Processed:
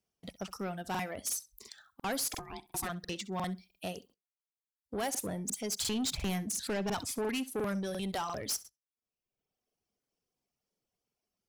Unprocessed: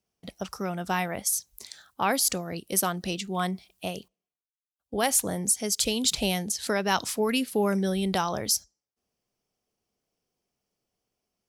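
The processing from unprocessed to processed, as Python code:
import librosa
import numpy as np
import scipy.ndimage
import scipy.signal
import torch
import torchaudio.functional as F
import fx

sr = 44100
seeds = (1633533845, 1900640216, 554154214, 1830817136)

y = fx.dereverb_blind(x, sr, rt60_s=0.92)
y = fx.ring_mod(y, sr, carrier_hz=540.0, at=(2.27, 2.88), fade=0.02)
y = fx.low_shelf(y, sr, hz=380.0, db=9.0, at=(5.81, 7.19))
y = 10.0 ** (-26.0 / 20.0) * np.tanh(y / 10.0 ** (-26.0 / 20.0))
y = fx.room_flutter(y, sr, wall_m=11.2, rt60_s=0.21)
y = fx.buffer_crackle(y, sr, first_s=0.9, period_s=0.35, block=2048, kind='repeat')
y = y * 10.0 ** (-3.5 / 20.0)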